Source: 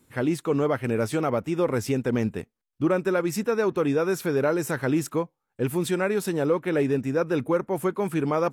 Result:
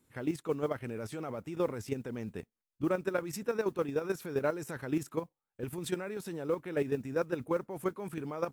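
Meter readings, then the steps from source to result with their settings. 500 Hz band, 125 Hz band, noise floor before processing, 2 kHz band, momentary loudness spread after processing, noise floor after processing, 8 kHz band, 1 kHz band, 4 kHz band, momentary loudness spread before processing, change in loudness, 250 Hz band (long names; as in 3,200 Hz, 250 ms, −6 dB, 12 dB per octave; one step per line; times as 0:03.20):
−9.5 dB, −11.5 dB, −81 dBFS, −10.5 dB, 7 LU, below −85 dBFS, −10.5 dB, −10.5 dB, −10.0 dB, 4 LU, −10.0 dB, −11.0 dB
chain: output level in coarse steps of 11 dB
noise that follows the level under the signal 34 dB
level −5.5 dB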